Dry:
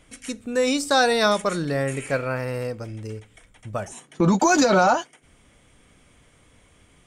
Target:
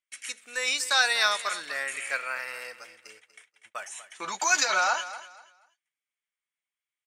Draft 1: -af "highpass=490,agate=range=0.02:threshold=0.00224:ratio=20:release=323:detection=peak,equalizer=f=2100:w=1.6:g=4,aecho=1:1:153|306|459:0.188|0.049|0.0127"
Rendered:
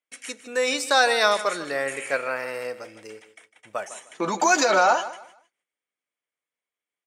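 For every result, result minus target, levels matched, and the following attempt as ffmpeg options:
500 Hz band +10.0 dB; echo 89 ms early
-af "highpass=1400,agate=range=0.02:threshold=0.00224:ratio=20:release=323:detection=peak,equalizer=f=2100:w=1.6:g=4,aecho=1:1:153|306|459:0.188|0.049|0.0127"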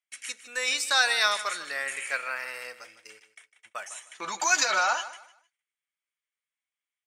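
echo 89 ms early
-af "highpass=1400,agate=range=0.02:threshold=0.00224:ratio=20:release=323:detection=peak,equalizer=f=2100:w=1.6:g=4,aecho=1:1:242|484|726:0.188|0.049|0.0127"

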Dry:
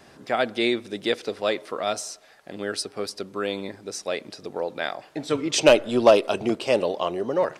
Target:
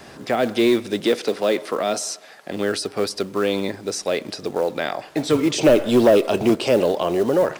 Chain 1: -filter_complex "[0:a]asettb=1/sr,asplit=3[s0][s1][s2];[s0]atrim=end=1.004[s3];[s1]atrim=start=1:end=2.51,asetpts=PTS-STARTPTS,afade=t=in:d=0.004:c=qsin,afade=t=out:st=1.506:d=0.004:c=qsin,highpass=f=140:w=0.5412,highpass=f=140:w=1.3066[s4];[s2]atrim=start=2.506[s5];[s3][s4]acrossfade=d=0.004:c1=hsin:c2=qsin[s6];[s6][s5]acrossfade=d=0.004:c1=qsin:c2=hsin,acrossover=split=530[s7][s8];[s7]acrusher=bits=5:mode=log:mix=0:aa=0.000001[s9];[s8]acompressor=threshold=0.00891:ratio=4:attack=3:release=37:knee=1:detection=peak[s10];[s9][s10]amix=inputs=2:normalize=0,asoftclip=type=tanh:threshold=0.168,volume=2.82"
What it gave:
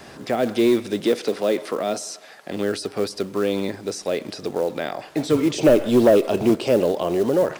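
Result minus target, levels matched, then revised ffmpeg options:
compression: peak gain reduction +5.5 dB
-filter_complex "[0:a]asettb=1/sr,asplit=3[s0][s1][s2];[s0]atrim=end=1.004[s3];[s1]atrim=start=1:end=2.51,asetpts=PTS-STARTPTS,afade=t=in:d=0.004:c=qsin,afade=t=out:st=1.506:d=0.004:c=qsin,highpass=f=140:w=0.5412,highpass=f=140:w=1.3066[s4];[s2]atrim=start=2.506[s5];[s3][s4]acrossfade=d=0.004:c1=hsin:c2=qsin[s6];[s6][s5]acrossfade=d=0.004:c1=qsin:c2=hsin,acrossover=split=530[s7][s8];[s7]acrusher=bits=5:mode=log:mix=0:aa=0.000001[s9];[s8]acompressor=threshold=0.02:ratio=4:attack=3:release=37:knee=1:detection=peak[s10];[s9][s10]amix=inputs=2:normalize=0,asoftclip=type=tanh:threshold=0.168,volume=2.82"

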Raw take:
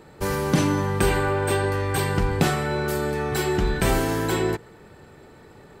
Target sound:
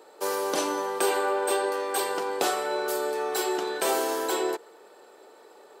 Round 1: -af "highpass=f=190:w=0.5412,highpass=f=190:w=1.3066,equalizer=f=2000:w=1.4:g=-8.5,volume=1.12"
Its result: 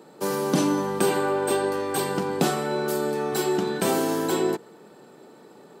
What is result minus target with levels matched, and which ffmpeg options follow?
250 Hz band +7.0 dB
-af "highpass=f=410:w=0.5412,highpass=f=410:w=1.3066,equalizer=f=2000:w=1.4:g=-8.5,volume=1.12"

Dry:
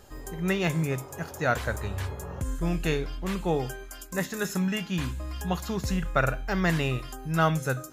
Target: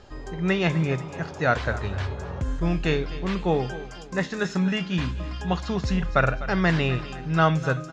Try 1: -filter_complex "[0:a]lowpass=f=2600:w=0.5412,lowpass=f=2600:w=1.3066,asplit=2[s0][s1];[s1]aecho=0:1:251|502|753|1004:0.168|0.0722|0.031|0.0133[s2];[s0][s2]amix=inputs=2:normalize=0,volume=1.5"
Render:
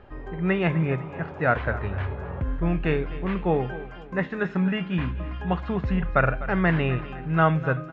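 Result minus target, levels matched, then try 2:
4 kHz band -7.5 dB
-filter_complex "[0:a]lowpass=f=5400:w=0.5412,lowpass=f=5400:w=1.3066,asplit=2[s0][s1];[s1]aecho=0:1:251|502|753|1004:0.168|0.0722|0.031|0.0133[s2];[s0][s2]amix=inputs=2:normalize=0,volume=1.5"

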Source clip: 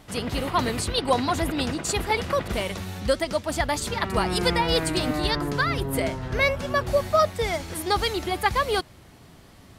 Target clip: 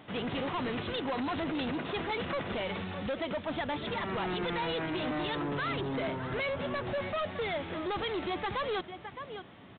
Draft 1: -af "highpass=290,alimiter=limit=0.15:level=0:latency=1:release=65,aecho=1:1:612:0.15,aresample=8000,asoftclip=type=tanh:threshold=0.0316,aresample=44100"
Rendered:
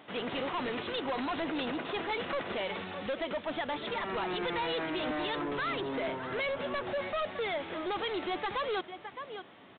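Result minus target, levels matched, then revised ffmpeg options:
125 Hz band -8.0 dB
-af "highpass=140,alimiter=limit=0.15:level=0:latency=1:release=65,aecho=1:1:612:0.15,aresample=8000,asoftclip=type=tanh:threshold=0.0316,aresample=44100"

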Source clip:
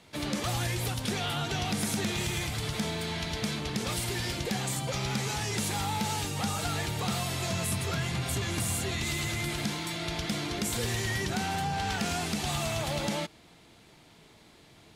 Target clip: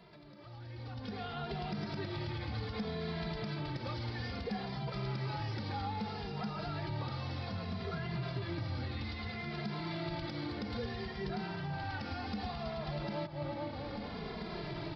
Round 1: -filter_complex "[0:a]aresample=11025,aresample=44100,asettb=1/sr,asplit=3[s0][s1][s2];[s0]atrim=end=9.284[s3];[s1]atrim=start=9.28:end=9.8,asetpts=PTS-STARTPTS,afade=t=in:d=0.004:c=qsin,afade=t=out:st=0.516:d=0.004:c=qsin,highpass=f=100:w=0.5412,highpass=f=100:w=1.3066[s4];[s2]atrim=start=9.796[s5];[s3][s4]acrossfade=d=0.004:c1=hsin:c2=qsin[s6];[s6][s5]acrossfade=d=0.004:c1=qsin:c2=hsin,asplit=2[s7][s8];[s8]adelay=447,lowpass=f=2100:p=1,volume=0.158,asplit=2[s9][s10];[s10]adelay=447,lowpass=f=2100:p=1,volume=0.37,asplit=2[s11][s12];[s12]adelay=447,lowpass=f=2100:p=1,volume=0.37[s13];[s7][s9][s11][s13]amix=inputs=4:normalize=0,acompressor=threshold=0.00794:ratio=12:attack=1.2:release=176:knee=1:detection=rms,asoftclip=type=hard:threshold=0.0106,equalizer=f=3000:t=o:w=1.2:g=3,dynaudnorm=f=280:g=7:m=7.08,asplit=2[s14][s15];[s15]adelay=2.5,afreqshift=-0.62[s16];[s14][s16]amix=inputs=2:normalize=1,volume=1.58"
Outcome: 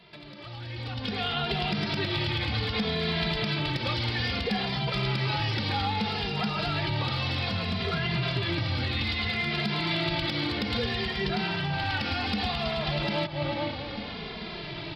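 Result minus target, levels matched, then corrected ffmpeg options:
compression: peak gain reduction -8 dB; 4 kHz band +6.0 dB
-filter_complex "[0:a]aresample=11025,aresample=44100,asettb=1/sr,asplit=3[s0][s1][s2];[s0]atrim=end=9.284[s3];[s1]atrim=start=9.28:end=9.8,asetpts=PTS-STARTPTS,afade=t=in:d=0.004:c=qsin,afade=t=out:st=0.516:d=0.004:c=qsin,highpass=f=100:w=0.5412,highpass=f=100:w=1.3066[s4];[s2]atrim=start=9.796[s5];[s3][s4]acrossfade=d=0.004:c1=hsin:c2=qsin[s6];[s6][s5]acrossfade=d=0.004:c1=qsin:c2=hsin,asplit=2[s7][s8];[s8]adelay=447,lowpass=f=2100:p=1,volume=0.158,asplit=2[s9][s10];[s10]adelay=447,lowpass=f=2100:p=1,volume=0.37,asplit=2[s11][s12];[s12]adelay=447,lowpass=f=2100:p=1,volume=0.37[s13];[s7][s9][s11][s13]amix=inputs=4:normalize=0,acompressor=threshold=0.00282:ratio=12:attack=1.2:release=176:knee=1:detection=rms,asoftclip=type=hard:threshold=0.0106,equalizer=f=3000:t=o:w=1.2:g=-8.5,dynaudnorm=f=280:g=7:m=7.08,asplit=2[s14][s15];[s15]adelay=2.5,afreqshift=-0.62[s16];[s14][s16]amix=inputs=2:normalize=1,volume=1.58"

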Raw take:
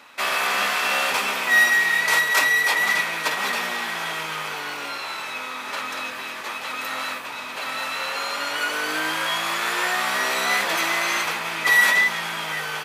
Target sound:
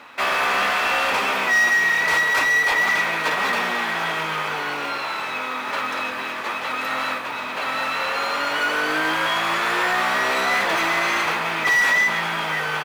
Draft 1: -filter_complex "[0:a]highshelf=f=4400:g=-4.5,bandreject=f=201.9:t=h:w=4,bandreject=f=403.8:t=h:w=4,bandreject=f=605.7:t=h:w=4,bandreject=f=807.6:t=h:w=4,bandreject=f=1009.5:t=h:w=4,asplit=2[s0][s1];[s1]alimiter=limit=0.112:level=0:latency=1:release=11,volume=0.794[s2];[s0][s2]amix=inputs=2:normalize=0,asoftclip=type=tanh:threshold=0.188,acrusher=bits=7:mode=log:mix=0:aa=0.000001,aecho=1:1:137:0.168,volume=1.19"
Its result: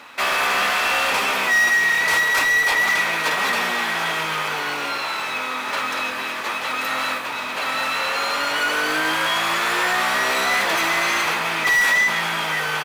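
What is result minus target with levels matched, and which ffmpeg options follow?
8 kHz band +4.0 dB
-filter_complex "[0:a]highshelf=f=4400:g=-14,bandreject=f=201.9:t=h:w=4,bandreject=f=403.8:t=h:w=4,bandreject=f=605.7:t=h:w=4,bandreject=f=807.6:t=h:w=4,bandreject=f=1009.5:t=h:w=4,asplit=2[s0][s1];[s1]alimiter=limit=0.112:level=0:latency=1:release=11,volume=0.794[s2];[s0][s2]amix=inputs=2:normalize=0,asoftclip=type=tanh:threshold=0.188,acrusher=bits=7:mode=log:mix=0:aa=0.000001,aecho=1:1:137:0.168,volume=1.19"

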